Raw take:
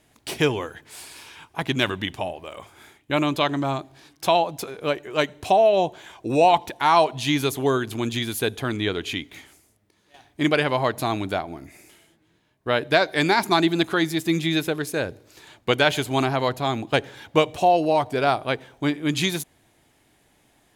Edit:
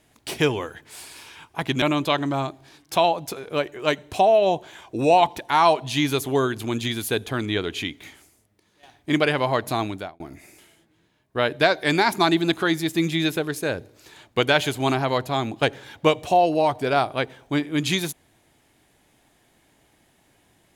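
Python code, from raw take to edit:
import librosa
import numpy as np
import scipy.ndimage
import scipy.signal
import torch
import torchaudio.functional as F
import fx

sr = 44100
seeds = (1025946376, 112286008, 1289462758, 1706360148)

y = fx.edit(x, sr, fx.cut(start_s=1.82, length_s=1.31),
    fx.fade_out_span(start_s=11.12, length_s=0.39), tone=tone)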